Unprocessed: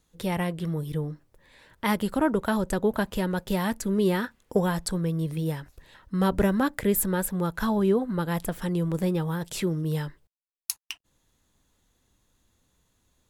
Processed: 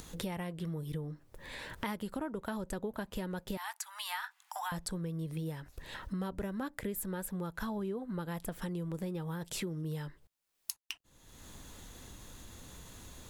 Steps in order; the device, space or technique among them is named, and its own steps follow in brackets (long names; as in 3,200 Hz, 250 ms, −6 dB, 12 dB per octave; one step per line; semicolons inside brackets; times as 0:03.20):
0:03.57–0:04.72: Butterworth high-pass 760 Hz 72 dB per octave
upward and downward compression (upward compression, threshold −37 dBFS; downward compressor 6 to 1, threshold −38 dBFS, peak gain reduction 18.5 dB)
level +2 dB